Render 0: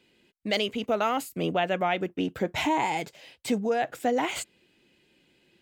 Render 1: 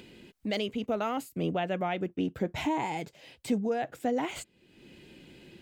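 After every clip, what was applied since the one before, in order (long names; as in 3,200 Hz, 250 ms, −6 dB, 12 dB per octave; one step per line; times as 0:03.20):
upward compression, threshold −34 dBFS
low-shelf EQ 390 Hz +9 dB
level −7.5 dB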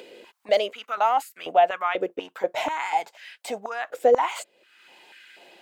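high-pass on a step sequencer 4.1 Hz 500–1,600 Hz
level +4.5 dB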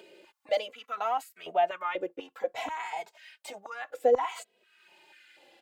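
barber-pole flanger 2.8 ms −0.61 Hz
level −4.5 dB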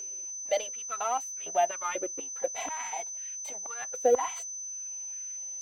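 mu-law and A-law mismatch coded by A
steady tone 6,100 Hz −36 dBFS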